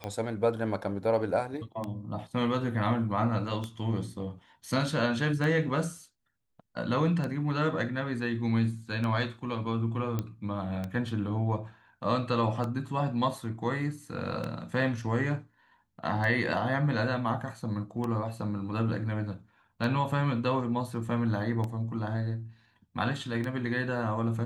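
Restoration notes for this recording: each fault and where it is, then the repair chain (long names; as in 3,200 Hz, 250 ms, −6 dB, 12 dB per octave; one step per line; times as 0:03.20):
scratch tick 33 1/3 rpm −21 dBFS
0:10.19: click −18 dBFS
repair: click removal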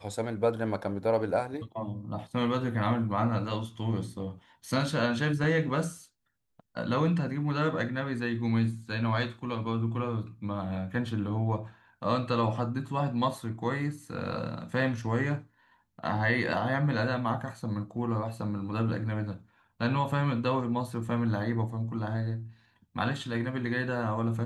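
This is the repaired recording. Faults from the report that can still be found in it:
0:10.19: click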